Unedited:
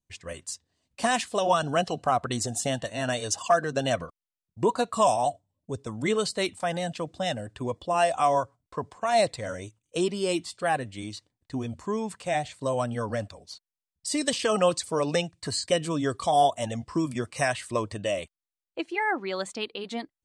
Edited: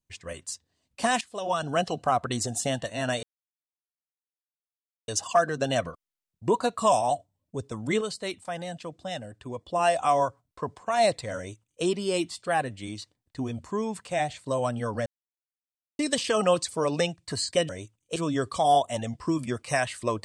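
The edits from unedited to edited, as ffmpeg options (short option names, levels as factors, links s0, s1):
-filter_complex "[0:a]asplit=9[s0][s1][s2][s3][s4][s5][s6][s7][s8];[s0]atrim=end=1.21,asetpts=PTS-STARTPTS,afade=t=out:st=1.206:d=0.004:c=hsin:silence=0.16788[s9];[s1]atrim=start=1.21:end=3.23,asetpts=PTS-STARTPTS,afade=t=in:d=0.63:silence=0.16788,afade=t=out:st=2.016:d=0.004:c=hsin,apad=pad_dur=1.85[s10];[s2]atrim=start=3.23:end=6.162,asetpts=PTS-STARTPTS,afade=t=in:d=0.004:c=hsin[s11];[s3]atrim=start=6.158:end=7.832,asetpts=PTS-STARTPTS,volume=0.531[s12];[s4]atrim=start=7.828:end=13.21,asetpts=PTS-STARTPTS,afade=t=out:st=5.378:d=0.004:c=hsin[s13];[s5]atrim=start=13.21:end=14.14,asetpts=PTS-STARTPTS,volume=0[s14];[s6]atrim=start=14.14:end=15.842,asetpts=PTS-STARTPTS,afade=t=in:d=0.004:c=hsin[s15];[s7]atrim=start=9.518:end=9.992[s16];[s8]atrim=start=15.838[s17];[s9][s10][s11]concat=n=3:v=0:a=1[s18];[s18][s12]acrossfade=d=0.004:c1=hsin:c2=hsin[s19];[s13][s14][s15]concat=n=3:v=0:a=1[s20];[s19][s20]acrossfade=d=0.004:c1=hsin:c2=hsin[s21];[s21][s16]acrossfade=d=0.004:c1=hsin:c2=hsin[s22];[s22][s17]acrossfade=d=0.004:c1=hsin:c2=hsin"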